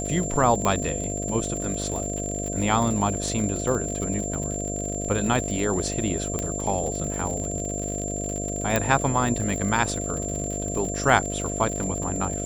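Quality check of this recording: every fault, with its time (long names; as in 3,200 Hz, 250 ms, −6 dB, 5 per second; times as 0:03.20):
mains buzz 50 Hz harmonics 14 −31 dBFS
surface crackle 78 per second −29 dBFS
whistle 7,300 Hz −31 dBFS
0:00.65: click −11 dBFS
0:06.39: click −13 dBFS
0:08.76: click −7 dBFS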